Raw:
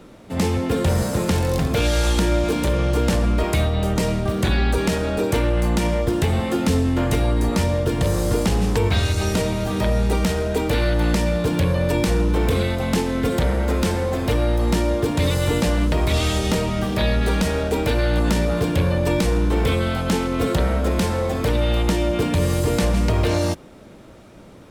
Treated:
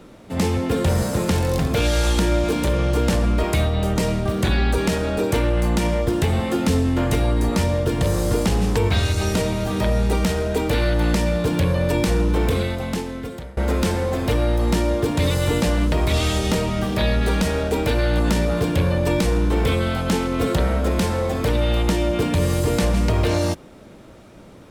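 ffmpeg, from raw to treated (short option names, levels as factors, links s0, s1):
-filter_complex "[0:a]asplit=2[s0][s1];[s0]atrim=end=13.57,asetpts=PTS-STARTPTS,afade=t=out:st=12.42:d=1.15:silence=0.0668344[s2];[s1]atrim=start=13.57,asetpts=PTS-STARTPTS,afade=t=in:d=0.004:c=hsin:silence=0.0668344[s3];[s2][s3]concat=n=2:v=0:a=1"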